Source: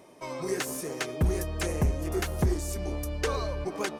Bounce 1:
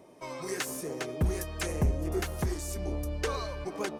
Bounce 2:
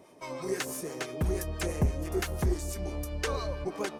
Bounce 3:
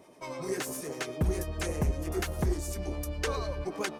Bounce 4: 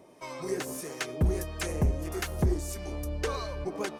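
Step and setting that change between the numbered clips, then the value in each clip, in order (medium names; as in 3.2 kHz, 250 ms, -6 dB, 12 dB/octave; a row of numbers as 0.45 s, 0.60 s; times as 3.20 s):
harmonic tremolo, rate: 1 Hz, 6 Hz, 10 Hz, 1.6 Hz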